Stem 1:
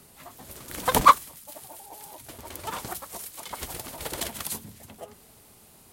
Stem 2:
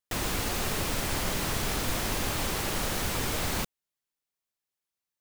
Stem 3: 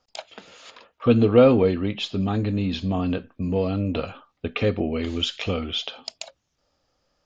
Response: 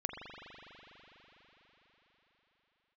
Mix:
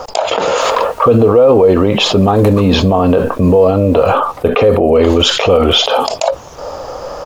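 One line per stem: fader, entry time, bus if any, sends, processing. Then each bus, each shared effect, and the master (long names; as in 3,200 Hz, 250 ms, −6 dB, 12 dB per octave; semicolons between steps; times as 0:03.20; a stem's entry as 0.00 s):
−9.5 dB, 1.50 s, no send, no processing
−2.0 dB, 0.50 s, no send, automatic ducking −11 dB, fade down 1.35 s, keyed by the third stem
−1.0 dB, 0.00 s, no send, octave-band graphic EQ 250/500/1,000/2,000/4,000 Hz −4/+11/+10/−4/−5 dB; envelope flattener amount 70%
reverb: not used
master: brickwall limiter −1 dBFS, peak gain reduction 8 dB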